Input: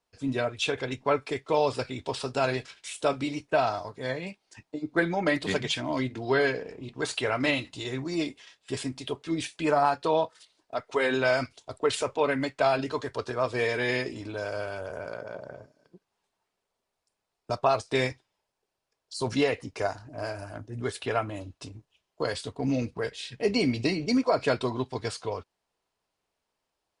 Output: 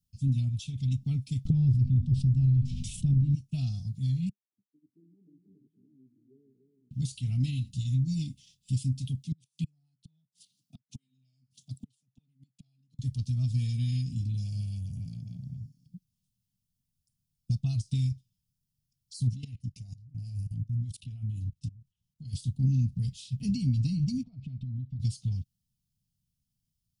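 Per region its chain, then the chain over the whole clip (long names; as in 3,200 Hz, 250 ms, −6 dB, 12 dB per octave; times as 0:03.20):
0:01.45–0:03.35: spectral tilt −4.5 dB per octave + hum removal 245.8 Hz, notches 31 + envelope flattener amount 70%
0:04.29–0:06.91: flat-topped band-pass 370 Hz, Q 5.9 + single-tap delay 291 ms −6 dB
0:09.25–0:12.99: high-pass filter 140 Hz 24 dB per octave + gate with flip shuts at −22 dBFS, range −40 dB
0:19.29–0:22.33: high-shelf EQ 5,300 Hz −4 dB + output level in coarse steps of 21 dB
0:24.23–0:25.00: low-pass filter 1,800 Hz + downward compressor 8 to 1, threshold −38 dBFS
whole clip: inverse Chebyshev band-stop filter 340–1,600 Hz, stop band 50 dB; downward compressor, threshold −38 dBFS; octave-band graphic EQ 125/250/500/1,000/2,000/4,000/8,000 Hz +5/+10/+4/+11/−12/−12/−8 dB; level +8.5 dB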